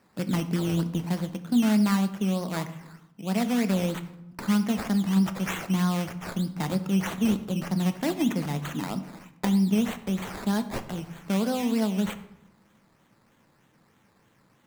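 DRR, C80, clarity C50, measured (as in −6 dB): 9.0 dB, 15.5 dB, 13.0 dB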